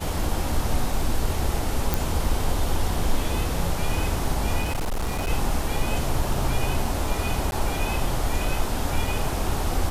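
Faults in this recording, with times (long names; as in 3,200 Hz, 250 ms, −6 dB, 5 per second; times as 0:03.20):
0:01.94: click
0:04.62–0:05.30: clipping −22 dBFS
0:07.51–0:07.52: drop-out 11 ms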